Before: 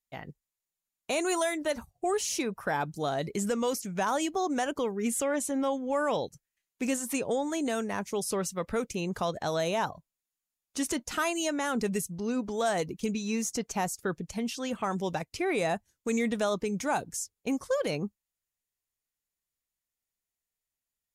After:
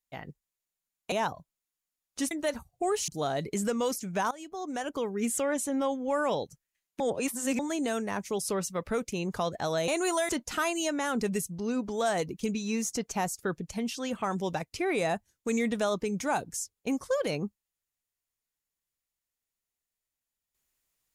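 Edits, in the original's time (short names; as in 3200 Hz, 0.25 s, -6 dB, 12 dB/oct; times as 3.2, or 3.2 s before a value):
1.12–1.53 swap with 9.7–10.89
2.3–2.9 cut
4.13–4.98 fade in, from -20.5 dB
6.82–7.41 reverse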